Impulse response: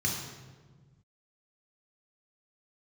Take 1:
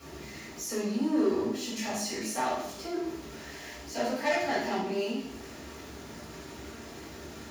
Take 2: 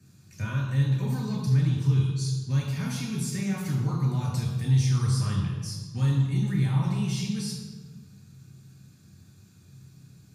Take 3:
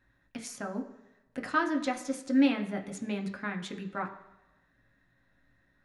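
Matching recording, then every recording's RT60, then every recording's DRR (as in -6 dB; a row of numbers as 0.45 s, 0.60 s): 2; 0.70 s, 1.4 s, no single decay rate; -12.0 dB, -2.5 dB, 3.0 dB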